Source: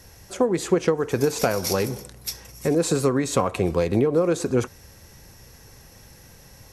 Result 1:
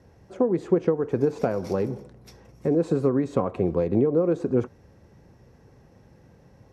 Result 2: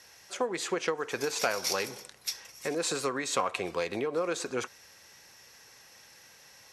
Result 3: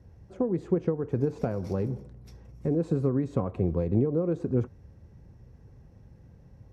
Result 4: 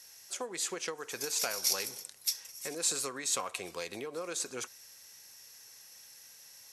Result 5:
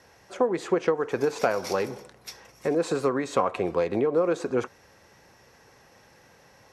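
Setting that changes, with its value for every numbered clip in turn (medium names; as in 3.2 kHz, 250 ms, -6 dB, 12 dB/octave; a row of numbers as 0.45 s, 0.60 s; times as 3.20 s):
band-pass filter, frequency: 260 Hz, 2.8 kHz, 100 Hz, 7.5 kHz, 1 kHz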